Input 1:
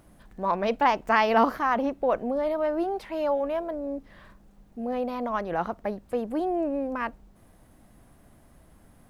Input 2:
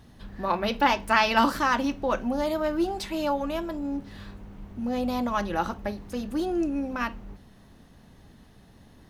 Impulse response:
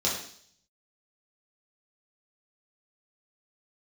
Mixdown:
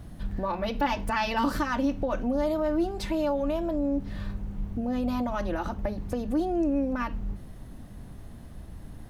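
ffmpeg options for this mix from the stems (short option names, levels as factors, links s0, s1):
-filter_complex "[0:a]acompressor=threshold=0.0224:ratio=8,volume=1.26,asplit=2[s0][s1];[1:a]volume=0.794[s2];[s1]apad=whole_len=400910[s3];[s2][s3]sidechaincompress=threshold=0.0158:ratio=8:attack=16:release=156[s4];[s0][s4]amix=inputs=2:normalize=0,lowshelf=f=230:g=11"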